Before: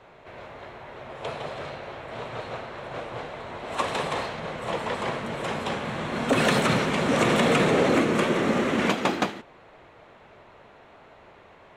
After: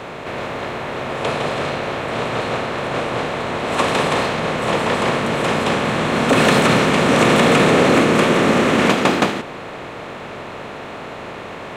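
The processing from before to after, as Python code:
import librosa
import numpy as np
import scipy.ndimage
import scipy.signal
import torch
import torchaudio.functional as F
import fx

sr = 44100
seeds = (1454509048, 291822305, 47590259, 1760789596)

y = fx.bin_compress(x, sr, power=0.6)
y = y * librosa.db_to_amplitude(5.0)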